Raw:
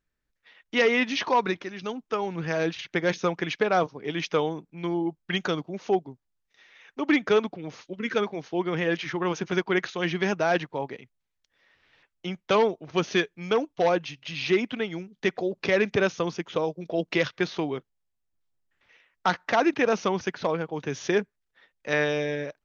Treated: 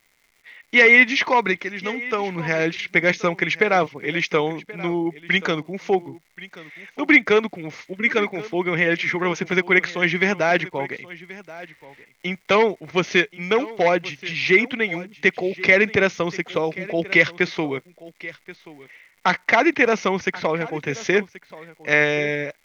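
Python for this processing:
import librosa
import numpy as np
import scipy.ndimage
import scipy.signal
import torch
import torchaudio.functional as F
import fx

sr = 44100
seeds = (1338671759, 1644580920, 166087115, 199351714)

p1 = fx.dmg_crackle(x, sr, seeds[0], per_s=330.0, level_db=-52.0)
p2 = fx.peak_eq(p1, sr, hz=2100.0, db=14.0, octaves=0.29)
p3 = p2 + fx.echo_single(p2, sr, ms=1080, db=-18.5, dry=0)
y = F.gain(torch.from_numpy(p3), 4.0).numpy()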